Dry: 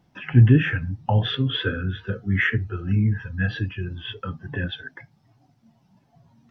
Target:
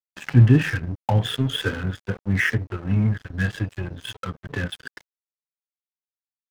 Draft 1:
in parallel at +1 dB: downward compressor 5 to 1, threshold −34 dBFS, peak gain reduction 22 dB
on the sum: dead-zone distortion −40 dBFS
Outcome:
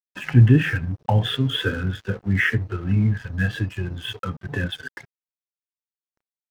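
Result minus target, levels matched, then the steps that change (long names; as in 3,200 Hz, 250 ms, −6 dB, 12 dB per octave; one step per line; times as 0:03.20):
dead-zone distortion: distortion −8 dB
change: dead-zone distortion −31.5 dBFS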